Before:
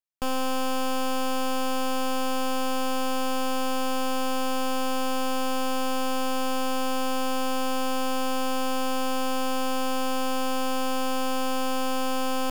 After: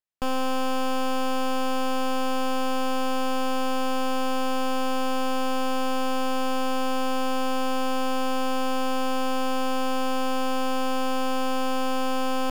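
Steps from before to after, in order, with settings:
high-shelf EQ 5,900 Hz −8 dB
level +1.5 dB

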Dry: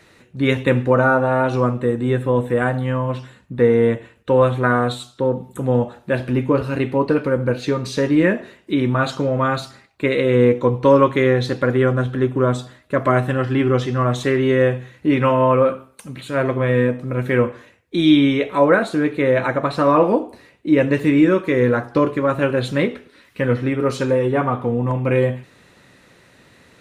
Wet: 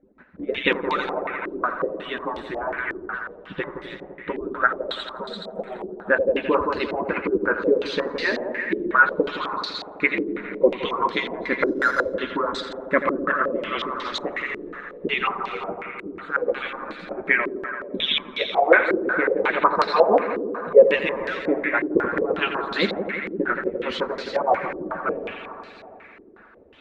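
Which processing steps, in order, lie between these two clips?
harmonic-percussive split with one part muted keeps percussive
0:04.86–0:05.68: phaser with its sweep stopped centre 330 Hz, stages 6
on a send: echo machine with several playback heads 85 ms, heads first and second, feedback 75%, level −11 dB
0:11.66–0:12.14: on the sum: bad sample-rate conversion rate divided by 8×, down none, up zero stuff
low-pass on a step sequencer 5.5 Hz 360–4,400 Hz
level −2 dB

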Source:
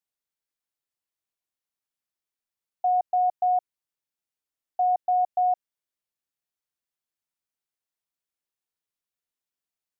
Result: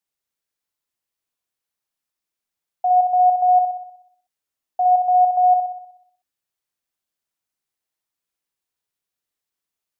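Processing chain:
flutter between parallel walls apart 10.6 metres, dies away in 0.7 s
level +3.5 dB

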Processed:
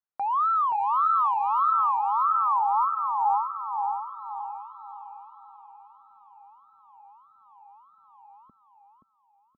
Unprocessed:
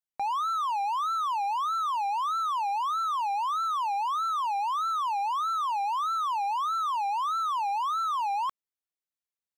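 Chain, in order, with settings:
high-pass filter 91 Hz 6 dB per octave
low-pass filter sweep 1,300 Hz → 230 Hz, 0:02.24–0:05.75
0:01.71–0:04.08: Savitzky-Golay smoothing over 41 samples
repeating echo 526 ms, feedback 39%, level −5 dB
level −2 dB

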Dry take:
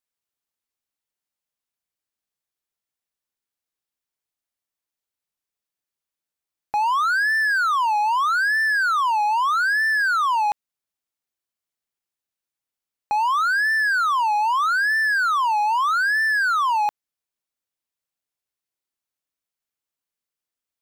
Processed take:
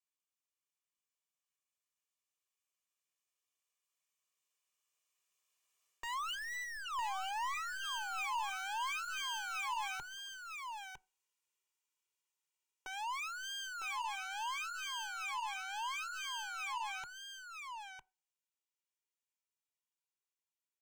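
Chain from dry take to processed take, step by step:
lower of the sound and its delayed copy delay 1.9 ms
source passing by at 0:06.94, 36 m/s, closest 2.6 metres
treble cut that deepens with the level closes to 570 Hz, closed at −34 dBFS
high-shelf EQ 4,100 Hz +5 dB
reversed playback
downward compressor 12 to 1, threshold −51 dBFS, peak gain reduction 22 dB
reversed playback
mid-hump overdrive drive 31 dB, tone 7,000 Hz, clips at −46.5 dBFS
EQ curve with evenly spaced ripples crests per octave 0.71, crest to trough 7 dB
single-tap delay 955 ms −6 dB
on a send at −21 dB: convolution reverb RT60 0.40 s, pre-delay 3 ms
on the sum: level +9.5 dB

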